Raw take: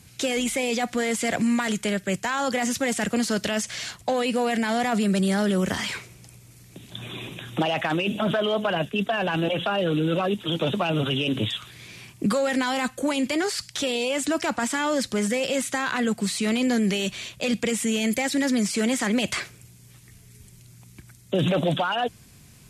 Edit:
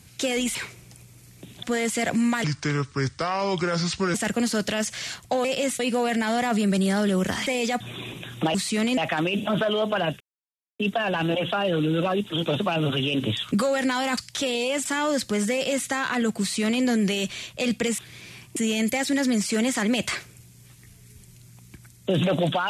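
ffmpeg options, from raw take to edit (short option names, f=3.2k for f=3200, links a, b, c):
-filter_complex "[0:a]asplit=17[a][b][c][d][e][f][g][h][i][j][k][l][m][n][o][p][q];[a]atrim=end=0.552[r];[b]atrim=start=5.878:end=6.962[s];[c]atrim=start=0.888:end=1.704[t];[d]atrim=start=1.7:end=2.91,asetpts=PTS-STARTPTS,asetrate=31311,aresample=44100,atrim=end_sample=75156,asetpts=PTS-STARTPTS[u];[e]atrim=start=2.906:end=4.212[v];[f]atrim=start=15.358:end=15.712[w];[g]atrim=start=4.208:end=5.882[x];[h]atrim=start=0.548:end=0.892[y];[i]atrim=start=6.958:end=7.702[z];[j]atrim=start=16.228:end=16.662[aa];[k]atrim=start=7.698:end=8.93,asetpts=PTS-STARTPTS,afade=t=out:st=1.228:d=0.004:c=hsin,apad=pad_dur=0.59[ab];[l]atrim=start=8.93:end=11.652,asetpts=PTS-STARTPTS,afade=t=in:d=0.004:c=hsin[ac];[m]atrim=start=12.228:end=12.892[ad];[n]atrim=start=13.578:end=14.262[ae];[o]atrim=start=14.678:end=17.812[af];[p]atrim=start=11.648:end=12.232[ag];[q]atrim=start=17.808[ah];[r][s]acrossfade=d=0.004:c1=hsin:c2=hsin[ai];[ai][t]acrossfade=d=0.004:c1=hsin:c2=hsin[aj];[aj][u]acrossfade=d=0.004:c1=hsin:c2=hsin[ak];[ak][v]acrossfade=d=0.004:c1=hsin:c2=hsin[al];[al][w]acrossfade=d=0.004:c1=hsin:c2=hsin[am];[am][x]acrossfade=d=0.004:c1=hsin:c2=hsin[an];[an][y]acrossfade=d=0.004:c1=hsin:c2=hsin[ao];[ao][z]acrossfade=d=0.004:c1=hsin:c2=hsin[ap];[ap][aa]acrossfade=d=0.004:c1=hsin:c2=hsin[aq];[ab][ac]concat=n=2:v=0:a=1[ar];[aq][ar]acrossfade=d=0.004:c1=hsin:c2=hsin[as];[as][ad]acrossfade=d=0.004:c1=hsin:c2=hsin[at];[at][ae]acrossfade=d=0.004:c1=hsin:c2=hsin[au];[au][af]acrossfade=d=0.004:c1=hsin:c2=hsin[av];[av][ag]acrossfade=d=0.004:c1=hsin:c2=hsin[aw];[aw][ah]acrossfade=d=0.004:c1=hsin:c2=hsin"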